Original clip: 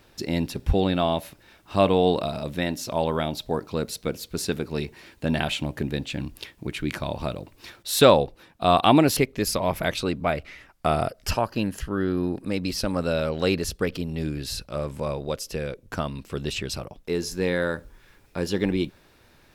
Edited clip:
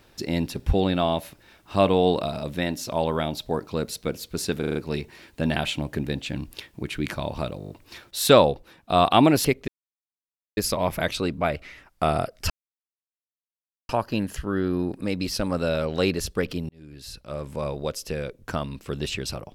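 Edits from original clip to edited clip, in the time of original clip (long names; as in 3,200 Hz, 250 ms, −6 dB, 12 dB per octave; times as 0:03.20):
0:04.59: stutter 0.04 s, 5 plays
0:07.42: stutter 0.02 s, 7 plays
0:09.40: splice in silence 0.89 s
0:11.33: splice in silence 1.39 s
0:14.13–0:15.15: fade in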